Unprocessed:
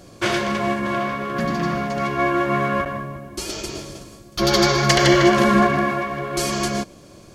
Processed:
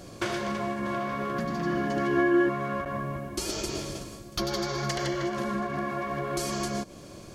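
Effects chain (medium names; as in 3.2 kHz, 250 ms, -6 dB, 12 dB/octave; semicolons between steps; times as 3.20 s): dynamic bell 2.6 kHz, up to -4 dB, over -37 dBFS, Q 1.1; compression 10:1, threshold -27 dBFS, peak gain reduction 17 dB; 1.65–2.48 s: small resonant body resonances 320/1700/3000 Hz, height 12 dB -> 16 dB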